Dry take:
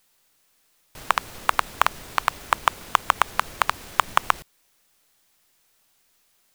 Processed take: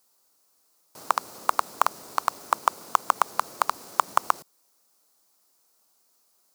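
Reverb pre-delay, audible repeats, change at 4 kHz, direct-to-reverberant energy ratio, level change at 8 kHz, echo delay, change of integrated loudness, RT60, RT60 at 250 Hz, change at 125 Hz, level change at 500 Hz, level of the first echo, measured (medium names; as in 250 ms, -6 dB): no reverb, no echo, -8.5 dB, no reverb, -1.0 dB, no echo, -2.5 dB, no reverb, no reverb, under -10 dB, -1.0 dB, no echo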